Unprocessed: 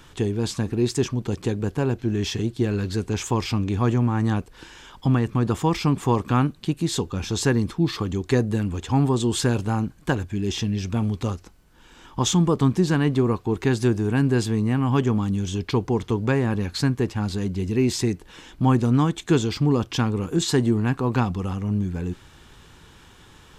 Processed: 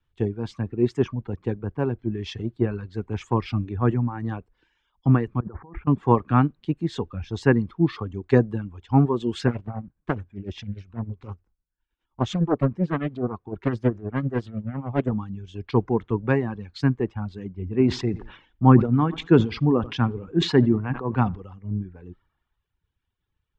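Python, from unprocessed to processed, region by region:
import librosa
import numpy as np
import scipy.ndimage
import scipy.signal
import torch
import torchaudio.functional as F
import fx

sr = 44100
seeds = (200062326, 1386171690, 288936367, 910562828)

y = fx.chain(x, sr, fx.steep_lowpass(hz=1800.0, slope=36),
    fx.over_compress(threshold_db=-29.0, ratio=-1.0), at=(5.4, 5.87))
y = fx.chain(y, sr, fx.tremolo(hz=9.8, depth=0.51),
    fx.doppler_dist(depth_ms=0.71), at=(9.47, 15.12))
y = fx.chain(y, sr, fx.air_absorb(metres=99.0),
    fx.echo_feedback(ms=85, feedback_pct=40, wet_db=-16.0),
    fx.sustainer(db_per_s=52.0), at=(17.51, 21.42))
y = fx.dereverb_blind(y, sr, rt60_s=1.2)
y = scipy.signal.sosfilt(scipy.signal.butter(2, 2000.0, 'lowpass', fs=sr, output='sos'), y)
y = fx.band_widen(y, sr, depth_pct=100)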